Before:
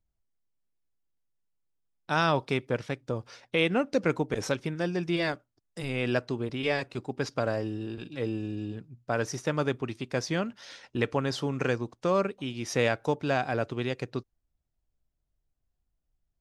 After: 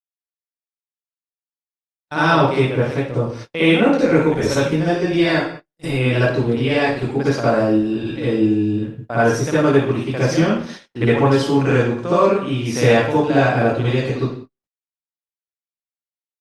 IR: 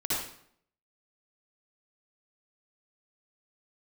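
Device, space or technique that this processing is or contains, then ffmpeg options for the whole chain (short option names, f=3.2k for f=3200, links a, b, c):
speakerphone in a meeting room: -filter_complex "[0:a]asettb=1/sr,asplit=3[a][b][c];[a]atrim=end=3.654[d];[b]atrim=start=3.65:end=4.34,asetpts=PTS-STARTPTS,afade=t=in:d=0.004:c=qsin,afade=t=out:st=0.686:d=0.004:c=qsin,asubboost=boost=10.5:cutoff=81[e];[c]atrim=start=4.336[f];[d][e]acrossfade=d=0.004:c1=hsin:c2=qsin[g];[g][f]acrossfade=d=0.004:c1=qsin:c2=hsin[h];[1:a]atrim=start_sample=2205[i];[h][i]afir=irnorm=-1:irlink=0,dynaudnorm=f=420:g=11:m=4.5dB,agate=range=-46dB:threshold=-33dB:ratio=16:detection=peak,volume=1.5dB" -ar 48000 -c:a libopus -b:a 32k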